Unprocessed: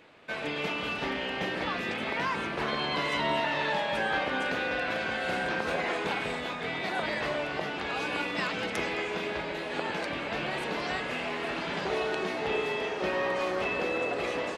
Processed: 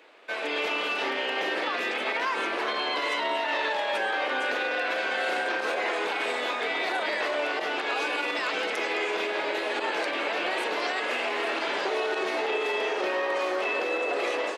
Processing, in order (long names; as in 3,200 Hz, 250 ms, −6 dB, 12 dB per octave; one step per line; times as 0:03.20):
automatic gain control gain up to 5 dB
brickwall limiter −21 dBFS, peak gain reduction 10 dB
high-pass filter 330 Hz 24 dB per octave
level +2 dB